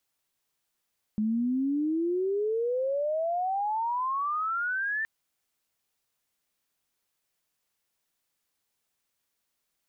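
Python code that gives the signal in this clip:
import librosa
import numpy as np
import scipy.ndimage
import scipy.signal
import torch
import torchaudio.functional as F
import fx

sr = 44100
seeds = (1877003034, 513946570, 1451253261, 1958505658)

y = fx.chirp(sr, length_s=3.87, from_hz=210.0, to_hz=1800.0, law='logarithmic', from_db=-24.0, to_db=-27.0)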